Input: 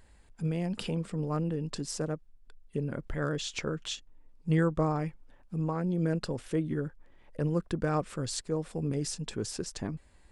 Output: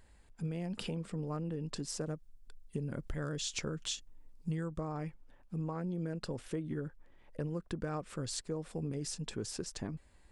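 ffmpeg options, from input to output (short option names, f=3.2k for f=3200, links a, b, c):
-filter_complex "[0:a]asettb=1/sr,asplit=3[a][b][c];[a]atrim=end=2.074[d];[b]atrim=start=2.07:end=4.8,asetpts=PTS-STARTPTS,afade=t=in:d=0.004:c=qsin,afade=t=out:st=2.726:d=0.004:c=qsin,bass=f=250:g=4,treble=f=4k:g=8[e];[c]atrim=start=4.796[f];[d][e]acrossfade=d=0.004:c1=hsin:c2=qsin[g];[g][f]acrossfade=d=0.004:c1=qsin:c2=hsin,acompressor=threshold=-30dB:ratio=10,volume=-3dB"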